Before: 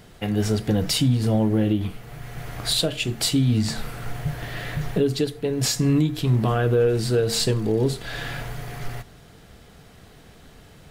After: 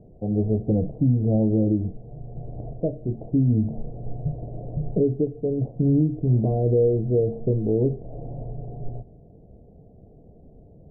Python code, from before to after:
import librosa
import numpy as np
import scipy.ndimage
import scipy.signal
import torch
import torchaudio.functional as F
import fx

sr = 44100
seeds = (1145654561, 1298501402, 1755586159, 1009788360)

y = scipy.signal.sosfilt(scipy.signal.butter(8, 680.0, 'lowpass', fs=sr, output='sos'), x)